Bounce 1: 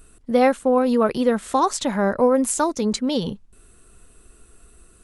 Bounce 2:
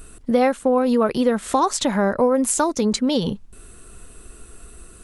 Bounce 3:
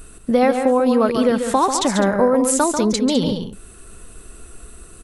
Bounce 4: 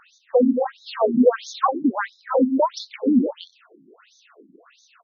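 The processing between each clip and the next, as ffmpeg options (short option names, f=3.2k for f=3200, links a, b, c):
-af "acompressor=threshold=-29dB:ratio=2,volume=8dB"
-af "aecho=1:1:141|205:0.447|0.224,volume=1.5dB"
-af "afftfilt=real='re*between(b*sr/1024,230*pow(4900/230,0.5+0.5*sin(2*PI*1.5*pts/sr))/1.41,230*pow(4900/230,0.5+0.5*sin(2*PI*1.5*pts/sr))*1.41)':imag='im*between(b*sr/1024,230*pow(4900/230,0.5+0.5*sin(2*PI*1.5*pts/sr))/1.41,230*pow(4900/230,0.5+0.5*sin(2*PI*1.5*pts/sr))*1.41)':win_size=1024:overlap=0.75,volume=3.5dB"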